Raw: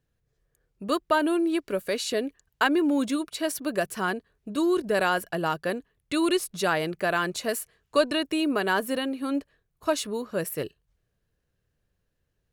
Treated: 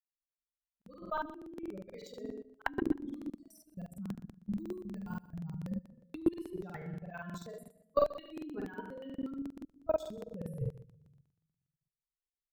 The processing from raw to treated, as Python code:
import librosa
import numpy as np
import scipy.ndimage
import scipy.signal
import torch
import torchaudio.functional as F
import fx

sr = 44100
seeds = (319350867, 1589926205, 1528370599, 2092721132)

p1 = fx.bin_expand(x, sr, power=3.0)
p2 = np.repeat(scipy.signal.resample_poly(p1, 1, 2), 2)[:len(p1)]
p3 = fx.room_shoebox(p2, sr, seeds[0], volume_m3=140.0, walls='mixed', distance_m=0.49)
p4 = fx.spec_box(p3, sr, start_s=3.3, length_s=2.57, low_hz=220.0, high_hz=4400.0, gain_db=-21)
p5 = fx.level_steps(p4, sr, step_db=24)
p6 = fx.dynamic_eq(p5, sr, hz=730.0, q=2.2, threshold_db=-49.0, ratio=4.0, max_db=-5)
p7 = fx.rider(p6, sr, range_db=4, speed_s=0.5)
p8 = fx.chopper(p7, sr, hz=4.9, depth_pct=60, duty_pct=15)
p9 = fx.tilt_eq(p8, sr, slope=-3.5)
p10 = p9 + fx.echo_feedback(p9, sr, ms=133, feedback_pct=20, wet_db=-17, dry=0)
p11 = fx.buffer_crackle(p10, sr, first_s=0.53, period_s=0.12, block=2048, kind='repeat')
y = F.gain(torch.from_numpy(p11), 3.0).numpy()